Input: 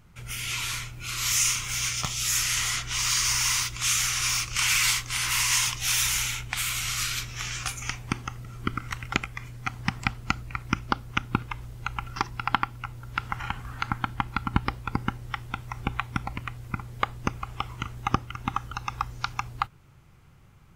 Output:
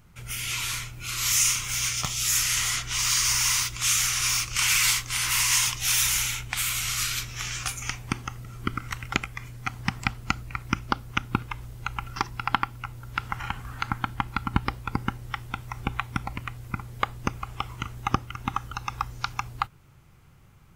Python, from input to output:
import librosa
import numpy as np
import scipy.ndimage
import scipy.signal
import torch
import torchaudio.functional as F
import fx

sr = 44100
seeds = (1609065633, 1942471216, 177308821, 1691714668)

y = fx.high_shelf(x, sr, hz=9200.0, db=5.5)